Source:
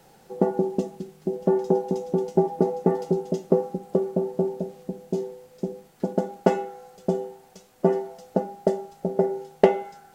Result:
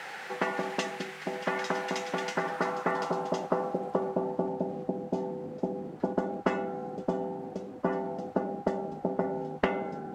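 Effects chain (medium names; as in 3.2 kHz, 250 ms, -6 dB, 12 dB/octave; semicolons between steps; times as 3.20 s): band-pass sweep 1.9 kHz -> 270 Hz, 2.24–4.56 s; spectrum-flattening compressor 4:1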